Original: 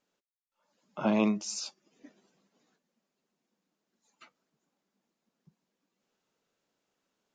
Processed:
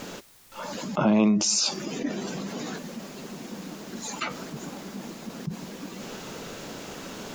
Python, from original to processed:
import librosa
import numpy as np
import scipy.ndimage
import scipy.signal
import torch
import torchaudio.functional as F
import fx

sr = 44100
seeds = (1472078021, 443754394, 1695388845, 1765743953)

y = fx.low_shelf(x, sr, hz=320.0, db=7.0)
y = fx.env_flatten(y, sr, amount_pct=70)
y = F.gain(torch.from_numpy(y), 1.0).numpy()